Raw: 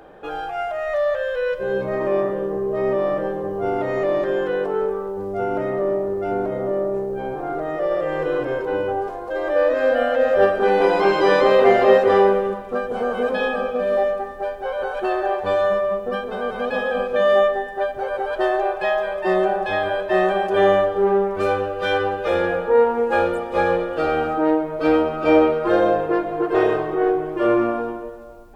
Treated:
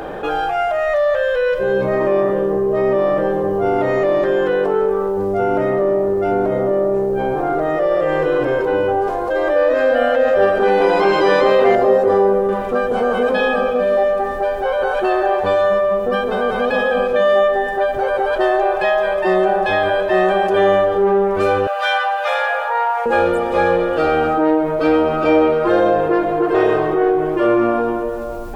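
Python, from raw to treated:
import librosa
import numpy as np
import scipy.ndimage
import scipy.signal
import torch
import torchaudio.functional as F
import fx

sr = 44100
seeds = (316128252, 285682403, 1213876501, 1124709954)

y = fx.peak_eq(x, sr, hz=2800.0, db=-13.5, octaves=1.8, at=(11.75, 12.49))
y = fx.steep_highpass(y, sr, hz=580.0, slope=72, at=(21.67, 23.06))
y = fx.env_flatten(y, sr, amount_pct=50)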